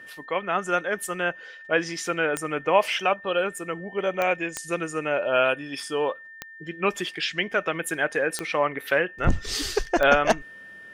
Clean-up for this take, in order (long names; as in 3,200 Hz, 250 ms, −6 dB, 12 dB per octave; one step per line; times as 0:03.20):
click removal
notch filter 1,800 Hz, Q 30